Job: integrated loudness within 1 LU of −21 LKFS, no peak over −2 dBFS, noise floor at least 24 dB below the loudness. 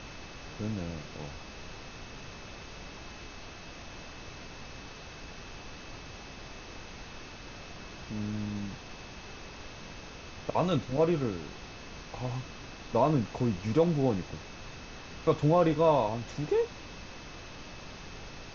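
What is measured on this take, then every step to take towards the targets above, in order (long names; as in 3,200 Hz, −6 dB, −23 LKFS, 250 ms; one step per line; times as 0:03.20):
interfering tone 2,600 Hz; level of the tone −55 dBFS; background noise floor −46 dBFS; target noise floor −55 dBFS; integrated loudness −30.5 LKFS; sample peak −12.0 dBFS; target loudness −21.0 LKFS
→ notch filter 2,600 Hz, Q 30
noise reduction from a noise print 9 dB
level +9.5 dB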